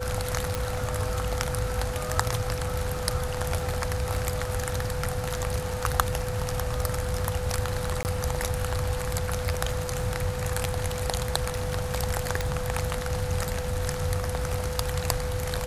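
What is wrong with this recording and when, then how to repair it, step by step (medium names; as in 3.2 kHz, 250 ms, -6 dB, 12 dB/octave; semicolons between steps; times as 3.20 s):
crackle 35 per s -37 dBFS
whine 500 Hz -33 dBFS
0.55 s: pop
8.03–8.05 s: dropout 19 ms
12.41 s: pop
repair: de-click; band-stop 500 Hz, Q 30; interpolate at 8.03 s, 19 ms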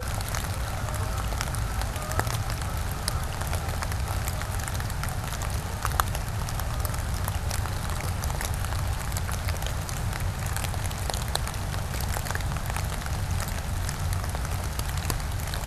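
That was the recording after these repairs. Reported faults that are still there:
0.55 s: pop
12.41 s: pop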